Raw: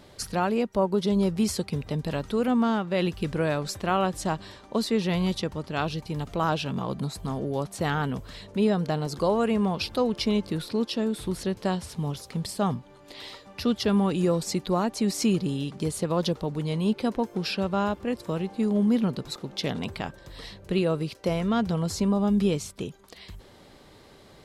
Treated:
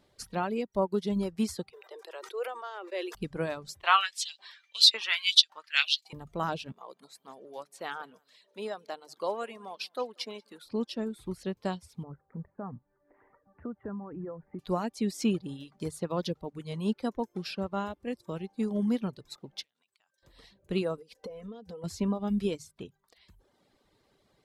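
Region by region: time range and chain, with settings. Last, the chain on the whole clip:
0:01.72–0:03.15: Chebyshev high-pass with heavy ripple 350 Hz, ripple 3 dB + level that may fall only so fast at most 33 dB per second
0:03.83–0:06.13: meter weighting curve D + auto-filter high-pass saw up 1.8 Hz 790–4,800 Hz + double-tracking delay 13 ms −10.5 dB
0:06.72–0:10.66: high-pass filter 480 Hz + single-tap delay 187 ms −15 dB
0:12.03–0:14.59: Butterworth low-pass 1,800 Hz 48 dB per octave + downward compressor 5 to 1, threshold −26 dBFS
0:19.63–0:20.23: resonant band-pass 6,200 Hz, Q 0.72 + downward compressor 12 to 1, threshold −50 dBFS
0:20.97–0:21.84: parametric band 460 Hz +12.5 dB 0.51 octaves + comb filter 4 ms, depth 81% + downward compressor 10 to 1, threshold −29 dBFS
whole clip: mains-hum notches 50/100/150 Hz; reverb reduction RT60 0.89 s; expander for the loud parts 1.5 to 1, over −44 dBFS

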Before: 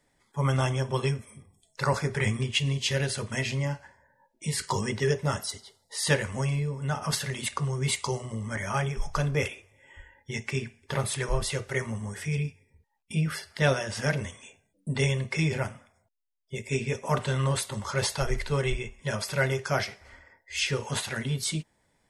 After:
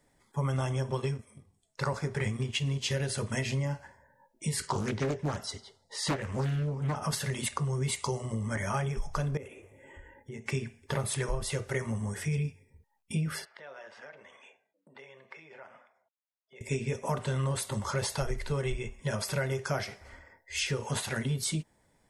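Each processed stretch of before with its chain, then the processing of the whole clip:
0:00.90–0:02.90: mu-law and A-law mismatch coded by A + low-pass filter 9,100 Hz
0:04.67–0:06.96: low-pass filter 6,100 Hz + highs frequency-modulated by the lows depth 0.77 ms
0:09.37–0:10.46: parametric band 330 Hz +9.5 dB 2 octaves + downward compressor 2.5 to 1, threshold −48 dBFS + Butterworth band-reject 4,500 Hz, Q 1.5
0:13.45–0:16.61: downward compressor 8 to 1, threshold −40 dBFS + band-pass filter 610–2,500 Hz
whole clip: parametric band 3,000 Hz −4.5 dB 2.5 octaves; downward compressor, threshold −30 dBFS; level +2.5 dB

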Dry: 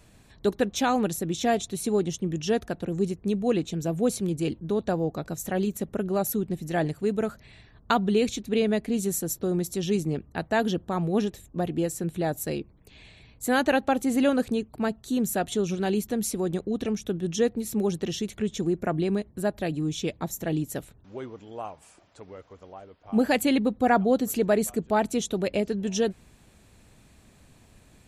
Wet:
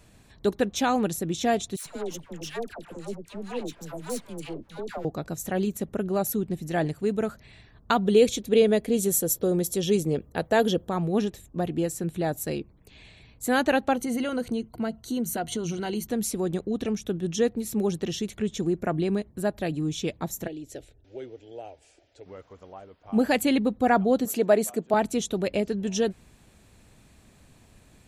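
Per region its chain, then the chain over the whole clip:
0:01.76–0:05.05: gain on one half-wave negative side −12 dB + low-shelf EQ 500 Hz −7.5 dB + all-pass dispersion lows, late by 97 ms, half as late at 870 Hz
0:08.05–0:10.90: high-shelf EQ 8,000 Hz +9.5 dB + hollow resonant body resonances 500/3,300 Hz, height 9 dB, ringing for 20 ms
0:13.95–0:16.07: EQ curve with evenly spaced ripples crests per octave 1.9, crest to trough 10 dB + downward compressor 2.5 to 1, threshold −26 dBFS
0:20.47–0:22.26: low-pass filter 6,100 Hz + downward compressor, threshold −29 dBFS + phaser with its sweep stopped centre 450 Hz, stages 4
0:24.25–0:24.94: high-pass filter 200 Hz + parametric band 670 Hz +4.5 dB 0.64 octaves
whole clip: no processing

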